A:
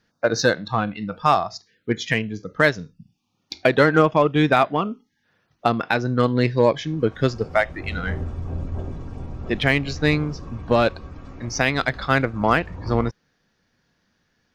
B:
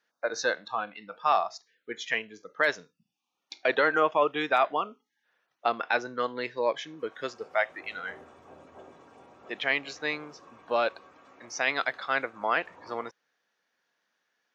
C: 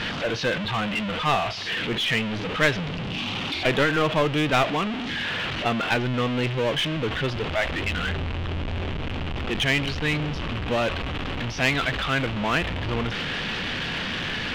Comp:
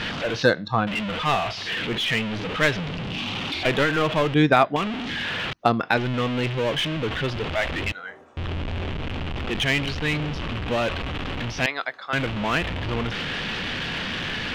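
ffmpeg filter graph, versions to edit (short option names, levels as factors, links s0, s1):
-filter_complex "[0:a]asplit=3[s0][s1][s2];[1:a]asplit=2[s3][s4];[2:a]asplit=6[s5][s6][s7][s8][s9][s10];[s5]atrim=end=0.432[s11];[s0]atrim=start=0.428:end=0.872[s12];[s6]atrim=start=0.868:end=4.342[s13];[s1]atrim=start=4.338:end=4.762[s14];[s7]atrim=start=4.758:end=5.532[s15];[s2]atrim=start=5.528:end=5.972[s16];[s8]atrim=start=5.968:end=7.922[s17];[s3]atrim=start=7.918:end=8.372[s18];[s9]atrim=start=8.368:end=11.662[s19];[s4]atrim=start=11.658:end=12.132[s20];[s10]atrim=start=12.128[s21];[s11][s12]acrossfade=d=0.004:c1=hsin:c2=hsin[s22];[s22][s13]acrossfade=d=0.004:c1=hsin:c2=hsin[s23];[s23][s14]acrossfade=d=0.004:c1=hsin:c2=hsin[s24];[s24][s15]acrossfade=d=0.004:c1=hsin:c2=hsin[s25];[s25][s16]acrossfade=d=0.004:c1=hsin:c2=hsin[s26];[s26][s17]acrossfade=d=0.004:c1=hsin:c2=hsin[s27];[s27][s18]acrossfade=d=0.004:c1=hsin:c2=hsin[s28];[s28][s19]acrossfade=d=0.004:c1=hsin:c2=hsin[s29];[s29][s20]acrossfade=d=0.004:c1=hsin:c2=hsin[s30];[s30][s21]acrossfade=d=0.004:c1=hsin:c2=hsin"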